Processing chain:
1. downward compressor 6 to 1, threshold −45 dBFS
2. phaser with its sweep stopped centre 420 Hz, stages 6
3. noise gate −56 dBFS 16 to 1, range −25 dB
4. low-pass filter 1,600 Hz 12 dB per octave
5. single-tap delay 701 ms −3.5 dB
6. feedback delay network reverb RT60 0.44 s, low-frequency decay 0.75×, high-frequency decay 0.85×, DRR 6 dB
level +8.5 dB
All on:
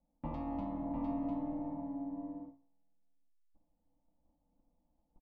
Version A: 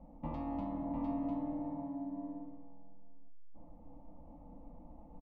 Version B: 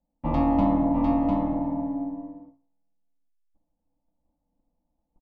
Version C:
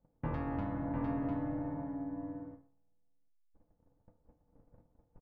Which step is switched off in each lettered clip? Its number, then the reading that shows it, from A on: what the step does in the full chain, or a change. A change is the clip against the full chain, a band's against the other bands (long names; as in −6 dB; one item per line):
3, change in momentary loudness spread +12 LU
1, average gain reduction 4.0 dB
2, 125 Hz band +7.5 dB